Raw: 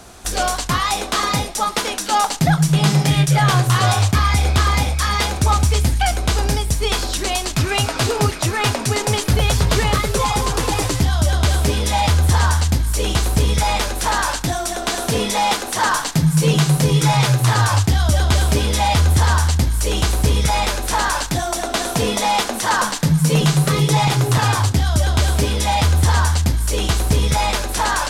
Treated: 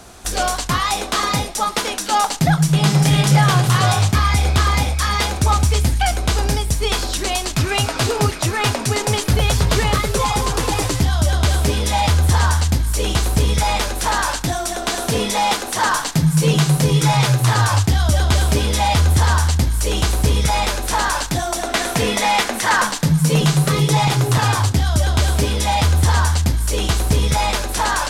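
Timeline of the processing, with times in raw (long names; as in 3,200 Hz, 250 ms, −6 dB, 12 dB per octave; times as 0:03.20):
0:02.55–0:03.01: delay throw 400 ms, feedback 45%, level −3 dB
0:21.67–0:22.87: parametric band 2,000 Hz +6.5 dB 0.74 octaves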